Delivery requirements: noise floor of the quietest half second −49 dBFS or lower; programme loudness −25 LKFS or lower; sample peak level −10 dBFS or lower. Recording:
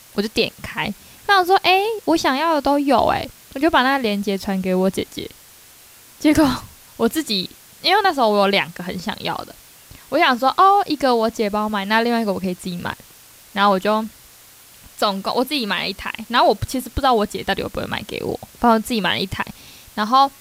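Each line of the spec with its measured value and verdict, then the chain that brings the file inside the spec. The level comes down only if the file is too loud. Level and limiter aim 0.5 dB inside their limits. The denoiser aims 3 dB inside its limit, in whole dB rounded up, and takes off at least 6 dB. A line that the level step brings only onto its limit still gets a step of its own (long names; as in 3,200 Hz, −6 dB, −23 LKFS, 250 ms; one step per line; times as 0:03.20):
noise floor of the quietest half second −46 dBFS: out of spec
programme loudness −19.0 LKFS: out of spec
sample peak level −4.0 dBFS: out of spec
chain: level −6.5 dB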